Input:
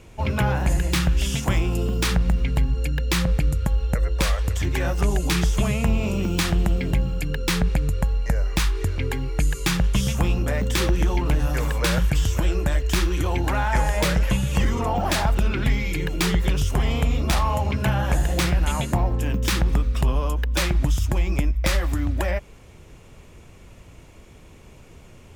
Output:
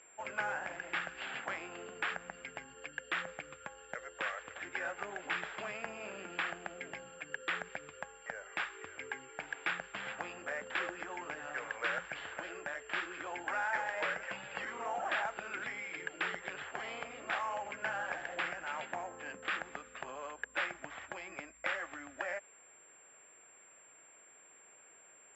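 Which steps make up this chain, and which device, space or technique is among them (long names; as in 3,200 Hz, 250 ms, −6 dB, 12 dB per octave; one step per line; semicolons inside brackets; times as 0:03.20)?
toy sound module (linearly interpolated sample-rate reduction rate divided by 6×; switching amplifier with a slow clock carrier 7,400 Hz; loudspeaker in its box 790–4,600 Hz, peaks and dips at 1,000 Hz −6 dB, 1,600 Hz +5 dB, 4,100 Hz −7 dB)
level −6.5 dB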